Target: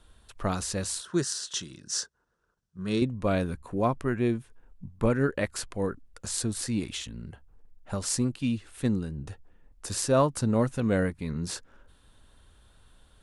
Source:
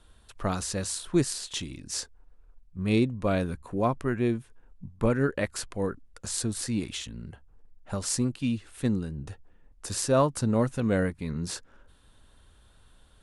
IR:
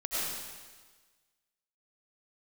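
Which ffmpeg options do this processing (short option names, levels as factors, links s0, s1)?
-filter_complex "[0:a]asettb=1/sr,asplit=3[s0][s1][s2];[s0]atrim=end=1.014[s3];[s1]atrim=start=1.01:end=3.02,asetpts=PTS-STARTPTS,afade=t=in:d=0.004:c=qsin,afade=t=out:st=2.006:d=0.004:c=qsin,highpass=160,equalizer=f=270:t=q:w=4:g=-10,equalizer=f=510:t=q:w=4:g=-3,equalizer=f=770:t=q:w=4:g=-8,equalizer=f=1500:t=q:w=4:g=7,equalizer=f=2300:t=q:w=4:g=-10,equalizer=f=5800:t=q:w=4:g=6,lowpass=f=9900:w=0.5412,lowpass=f=9900:w=1.3066[s4];[s2]atrim=start=3.016[s5];[s3][s4]acrossfade=d=0.004:c1=hsin:c2=qsin[s6];[s6][s5]acrossfade=d=0.004:c1=qsin:c2=hsin"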